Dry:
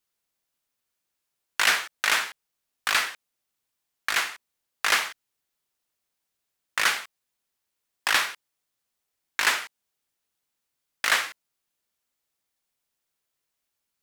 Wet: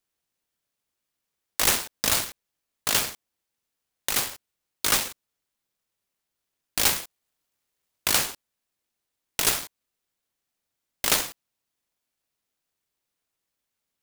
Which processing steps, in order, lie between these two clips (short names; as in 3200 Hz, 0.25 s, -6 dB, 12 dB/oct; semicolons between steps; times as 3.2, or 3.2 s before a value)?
6.78–8.1 bell 6000 Hz +12.5 dB 0.3 oct; noise-modulated delay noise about 2600 Hz, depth 0.27 ms